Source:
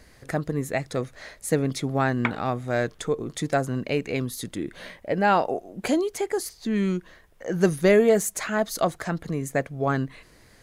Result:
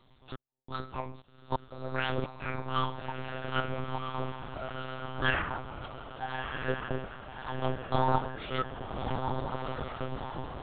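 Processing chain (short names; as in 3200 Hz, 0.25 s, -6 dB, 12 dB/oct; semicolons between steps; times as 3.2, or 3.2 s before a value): pitch shift by moving bins +12 st; on a send at -3 dB: reverb RT60 0.60 s, pre-delay 3 ms; on the sum: step gate "xx..xxx.x.xxx.xx" 87 bpm -60 dB; diffused feedback echo 1.297 s, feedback 53%, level -5 dB; monotone LPC vocoder at 8 kHz 130 Hz; gain -7 dB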